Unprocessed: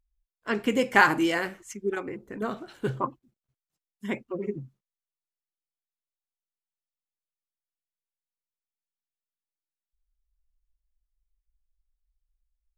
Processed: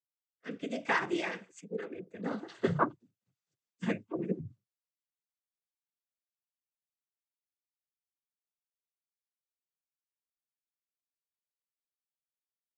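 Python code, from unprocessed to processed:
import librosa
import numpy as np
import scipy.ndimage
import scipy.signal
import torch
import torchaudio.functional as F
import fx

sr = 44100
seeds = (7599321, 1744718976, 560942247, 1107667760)

y = fx.doppler_pass(x, sr, speed_mps=27, closest_m=16.0, pass_at_s=3.33)
y = fx.noise_vocoder(y, sr, seeds[0], bands=16)
y = fx.rotary_switch(y, sr, hz=0.65, then_hz=6.0, switch_at_s=2.94)
y = y * librosa.db_to_amplitude(4.0)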